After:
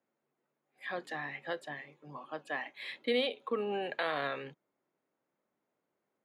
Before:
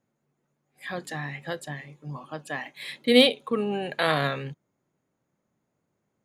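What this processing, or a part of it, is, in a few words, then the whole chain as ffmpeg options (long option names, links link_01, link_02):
DJ mixer with the lows and highs turned down: -filter_complex "[0:a]acrossover=split=260 4100:gain=0.126 1 0.2[link_01][link_02][link_03];[link_01][link_02][link_03]amix=inputs=3:normalize=0,alimiter=limit=-18dB:level=0:latency=1:release=195,volume=-3.5dB"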